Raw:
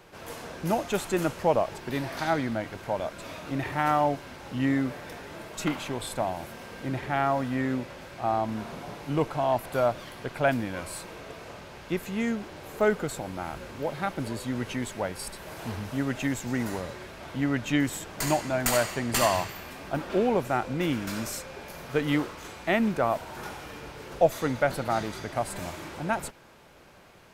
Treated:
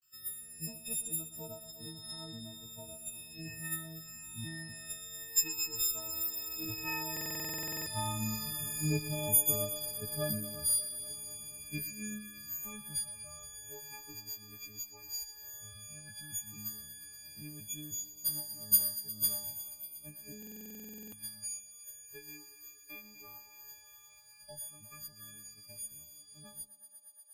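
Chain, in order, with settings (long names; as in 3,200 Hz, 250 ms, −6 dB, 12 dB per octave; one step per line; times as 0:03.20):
every partial snapped to a pitch grid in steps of 6 semitones
source passing by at 0:08.03, 13 m/s, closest 17 metres
downward expander −51 dBFS
drawn EQ curve 130 Hz 0 dB, 910 Hz −16 dB, 14,000 Hz +11 dB
transient designer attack +5 dB, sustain −4 dB
log-companded quantiser 8 bits
all-pass phaser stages 12, 0.12 Hz, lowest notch 170–2,400 Hz
feedback echo with a high-pass in the loop 119 ms, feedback 83%, high-pass 230 Hz, level −13 dB
buffer that repeats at 0:07.12/0:20.38, samples 2,048, times 15
one half of a high-frequency compander encoder only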